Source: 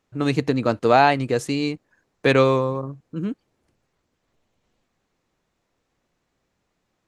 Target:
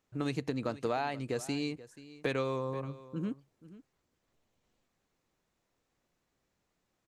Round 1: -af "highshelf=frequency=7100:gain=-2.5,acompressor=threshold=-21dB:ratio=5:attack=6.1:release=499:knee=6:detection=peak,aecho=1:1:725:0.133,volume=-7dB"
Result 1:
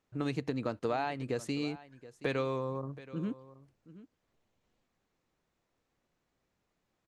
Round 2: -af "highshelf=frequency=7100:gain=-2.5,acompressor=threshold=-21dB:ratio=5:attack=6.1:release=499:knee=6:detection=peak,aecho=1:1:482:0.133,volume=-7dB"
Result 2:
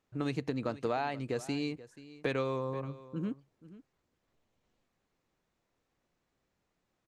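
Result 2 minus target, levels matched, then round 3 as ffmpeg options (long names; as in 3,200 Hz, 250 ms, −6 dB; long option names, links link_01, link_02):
8,000 Hz band −4.5 dB
-af "highshelf=frequency=7100:gain=6,acompressor=threshold=-21dB:ratio=5:attack=6.1:release=499:knee=6:detection=peak,aecho=1:1:482:0.133,volume=-7dB"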